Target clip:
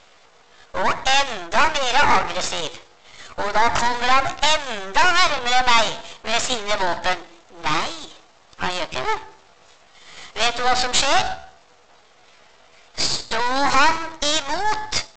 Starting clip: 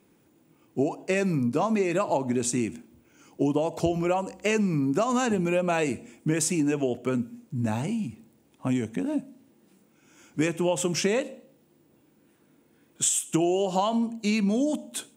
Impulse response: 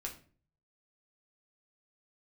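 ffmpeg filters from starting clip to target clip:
-filter_complex "[0:a]acrossover=split=5900[s0][s1];[s1]acompressor=threshold=0.00251:ratio=4:attack=1:release=60[s2];[s0][s2]amix=inputs=2:normalize=0,asetrate=62367,aresample=44100,atempo=0.707107,acontrast=36,apsyclip=15,highpass=f=720:w=0.5412,highpass=f=720:w=1.3066,aresample=16000,aeval=exprs='max(val(0),0)':c=same,aresample=44100,volume=0.531"

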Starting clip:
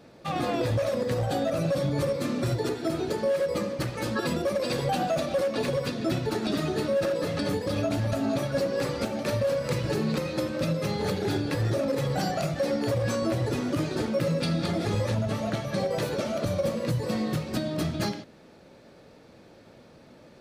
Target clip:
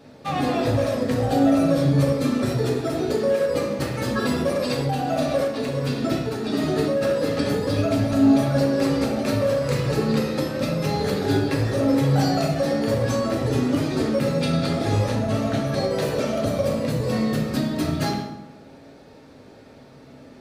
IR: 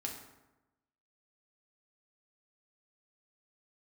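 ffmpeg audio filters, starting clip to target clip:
-filter_complex "[1:a]atrim=start_sample=2205[s0];[0:a][s0]afir=irnorm=-1:irlink=0,asettb=1/sr,asplit=3[s1][s2][s3];[s1]atrim=end=4.624[s4];[s2]atrim=start=4.62:end=7.01,asetpts=PTS-STARTPTS,afade=t=in:d=0.004:c=qsin,afade=t=out:st=2.386:d=0.004:c=qsin,tremolo=f=1.4:d=0.44[s5];[s3]atrim=start=7.006[s6];[s4][s5]acrossfade=d=0.004:c1=hsin:c2=qsin[s7];[s7][s6]acrossfade=d=0.004:c1=qsin:c2=hsin,volume=1.78"

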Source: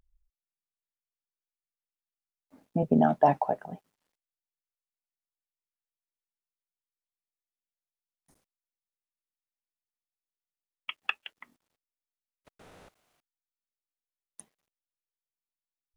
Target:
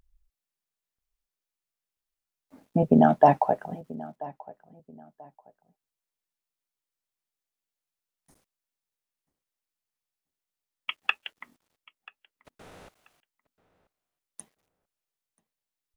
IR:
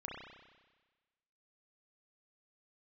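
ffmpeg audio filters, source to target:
-filter_complex "[0:a]asplit=2[s0][s1];[s1]adelay=985,lowpass=f=2500:p=1,volume=0.1,asplit=2[s2][s3];[s3]adelay=985,lowpass=f=2500:p=1,volume=0.27[s4];[s0][s2][s4]amix=inputs=3:normalize=0,volume=1.68"

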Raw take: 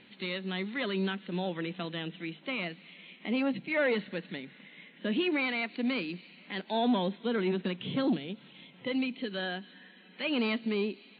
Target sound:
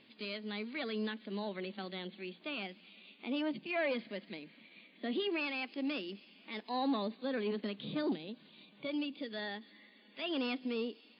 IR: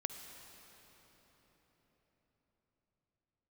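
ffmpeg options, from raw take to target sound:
-af "asetrate=49501,aresample=44100,atempo=0.890899,volume=0.501"

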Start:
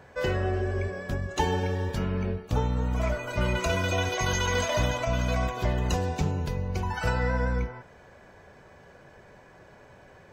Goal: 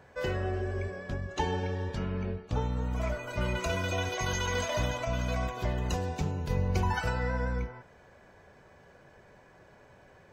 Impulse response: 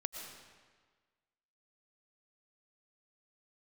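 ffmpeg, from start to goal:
-filter_complex "[0:a]asettb=1/sr,asplit=3[s0][s1][s2];[s0]atrim=end=0.964[s3];[s1]atrim=start=0.96:end=2.61,asetpts=PTS-STARTPTS,afade=t=in:d=0.004:c=qsin,afade=t=out:st=1.646:d=0.004:c=qsin,lowpass=6400[s4];[s2]atrim=start=2.606[s5];[s3][s4]acrossfade=d=0.004:c1=hsin:c2=qsin[s6];[s6][s5]acrossfade=d=0.004:c1=qsin:c2=hsin,asplit=3[s7][s8][s9];[s7]afade=t=out:st=6.49:d=0.02[s10];[s8]acontrast=63,afade=t=in:st=6.49:d=0.02,afade=t=out:st=7:d=0.02[s11];[s9]afade=t=in:st=7:d=0.02[s12];[s10][s11][s12]amix=inputs=3:normalize=0,volume=0.596"

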